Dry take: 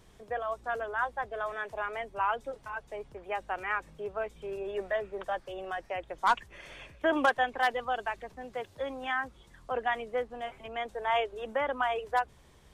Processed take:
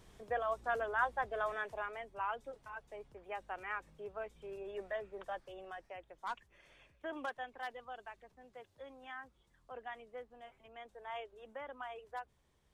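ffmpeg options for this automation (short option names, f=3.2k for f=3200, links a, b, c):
-af "volume=-2dB,afade=t=out:st=1.47:d=0.5:silence=0.446684,afade=t=out:st=5.38:d=0.8:silence=0.446684"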